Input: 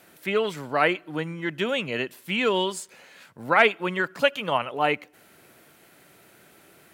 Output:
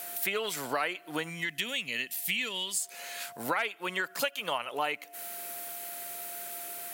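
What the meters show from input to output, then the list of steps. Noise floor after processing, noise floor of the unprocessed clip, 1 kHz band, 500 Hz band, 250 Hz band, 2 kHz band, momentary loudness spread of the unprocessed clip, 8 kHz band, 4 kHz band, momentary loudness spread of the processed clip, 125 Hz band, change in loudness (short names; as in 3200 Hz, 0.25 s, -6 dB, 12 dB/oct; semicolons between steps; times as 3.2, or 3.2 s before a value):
-54 dBFS, -56 dBFS, -8.5 dB, -11.5 dB, -11.0 dB, -7.0 dB, 11 LU, +7.5 dB, -3.0 dB, 7 LU, -12.0 dB, -8.0 dB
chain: whine 700 Hz -50 dBFS; RIAA curve recording; compressor 6:1, threshold -34 dBFS, peak gain reduction 21 dB; spectral gain 1.29–2.8, 290–1700 Hz -9 dB; gain +5 dB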